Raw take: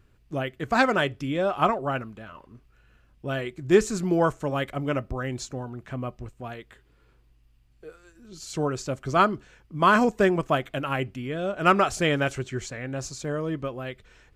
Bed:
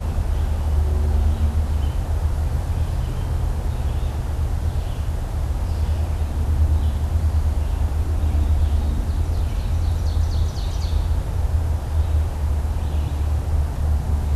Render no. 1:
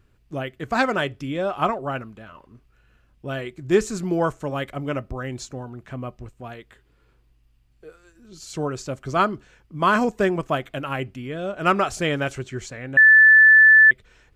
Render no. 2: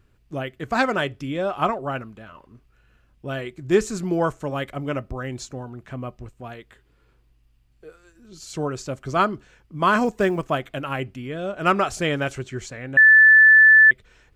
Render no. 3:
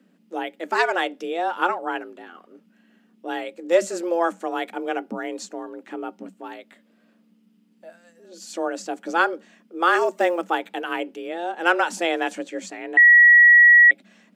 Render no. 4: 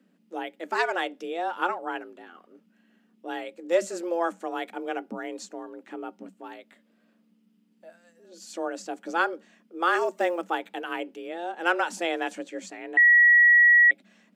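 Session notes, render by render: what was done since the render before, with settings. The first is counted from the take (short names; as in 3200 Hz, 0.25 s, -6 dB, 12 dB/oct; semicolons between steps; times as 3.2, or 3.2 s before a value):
12.97–13.91 bleep 1750 Hz -8 dBFS
10.05–10.45 companded quantiser 8-bit
frequency shift +170 Hz
gain -5 dB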